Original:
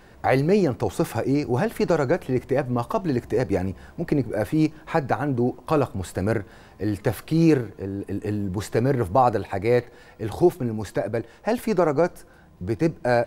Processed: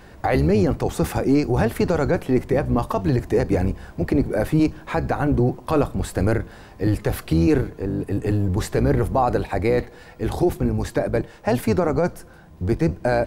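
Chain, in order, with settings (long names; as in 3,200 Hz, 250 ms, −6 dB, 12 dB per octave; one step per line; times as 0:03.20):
sub-octave generator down 1 octave, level −3 dB
boost into a limiter +12.5 dB
level −8.5 dB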